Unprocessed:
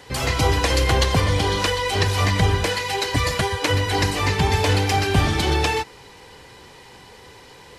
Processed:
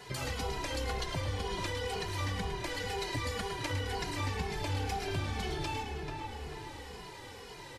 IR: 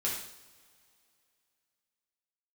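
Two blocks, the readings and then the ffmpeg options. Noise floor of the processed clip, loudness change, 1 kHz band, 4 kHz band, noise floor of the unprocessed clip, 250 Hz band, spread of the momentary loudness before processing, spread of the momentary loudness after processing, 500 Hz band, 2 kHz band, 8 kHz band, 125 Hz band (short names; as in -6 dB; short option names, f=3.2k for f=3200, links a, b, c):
-48 dBFS, -16.0 dB, -14.5 dB, -15.5 dB, -46 dBFS, -14.5 dB, 4 LU, 10 LU, -14.5 dB, -15.0 dB, -15.0 dB, -16.0 dB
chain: -filter_complex "[0:a]asplit=2[a][b];[b]adelay=438,lowpass=f=2k:p=1,volume=-10dB,asplit=2[c][d];[d]adelay=438,lowpass=f=2k:p=1,volume=0.35,asplit=2[e][f];[f]adelay=438,lowpass=f=2k:p=1,volume=0.35,asplit=2[g][h];[h]adelay=438,lowpass=f=2k:p=1,volume=0.35[i];[c][e][g][i]amix=inputs=4:normalize=0[j];[a][j]amix=inputs=2:normalize=0,acompressor=threshold=-34dB:ratio=3,asplit=2[k][l];[l]asplit=6[m][n][o][p][q][r];[m]adelay=107,afreqshift=-33,volume=-8dB[s];[n]adelay=214,afreqshift=-66,volume=-13.5dB[t];[o]adelay=321,afreqshift=-99,volume=-19dB[u];[p]adelay=428,afreqshift=-132,volume=-24.5dB[v];[q]adelay=535,afreqshift=-165,volume=-30.1dB[w];[r]adelay=642,afreqshift=-198,volume=-35.6dB[x];[s][t][u][v][w][x]amix=inputs=6:normalize=0[y];[k][y]amix=inputs=2:normalize=0,asplit=2[z][aa];[aa]adelay=2.4,afreqshift=-2[ab];[z][ab]amix=inputs=2:normalize=1,volume=-1dB"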